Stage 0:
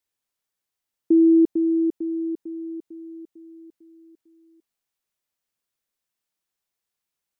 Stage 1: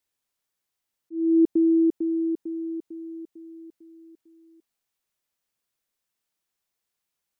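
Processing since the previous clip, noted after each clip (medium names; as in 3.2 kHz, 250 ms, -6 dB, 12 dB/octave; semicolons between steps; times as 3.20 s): slow attack 462 ms; trim +1.5 dB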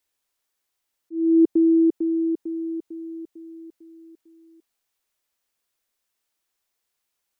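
peaking EQ 150 Hz -8.5 dB 1.1 oct; trim +4 dB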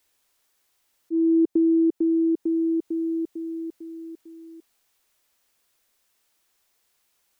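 compression 3:1, threshold -31 dBFS, peak gain reduction 13.5 dB; trim +9 dB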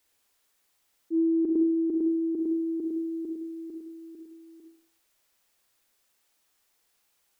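reverberation RT60 0.55 s, pre-delay 33 ms, DRR 3.5 dB; trim -3 dB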